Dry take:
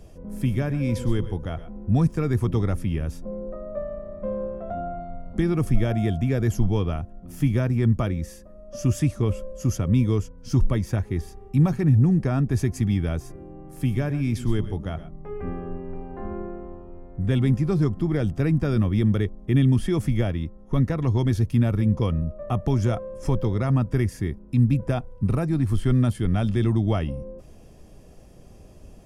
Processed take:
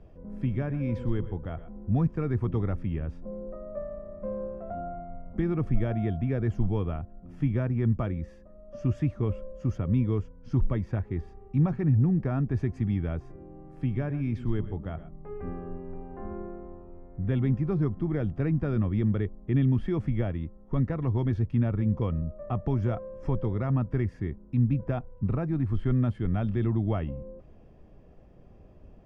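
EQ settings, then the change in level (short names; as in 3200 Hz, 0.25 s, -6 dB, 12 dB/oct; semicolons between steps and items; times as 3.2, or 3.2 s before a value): LPF 2100 Hz 12 dB/oct; -5.0 dB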